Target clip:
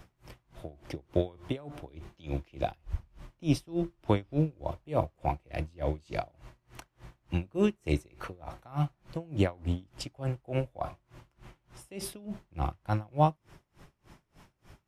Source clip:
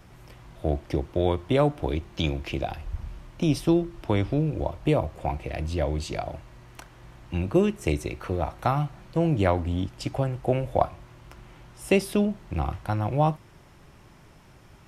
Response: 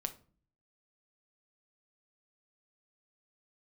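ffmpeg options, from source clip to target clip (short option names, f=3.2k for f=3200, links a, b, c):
-af "aeval=exprs='val(0)*pow(10,-29*(0.5-0.5*cos(2*PI*3.4*n/s))/20)':c=same"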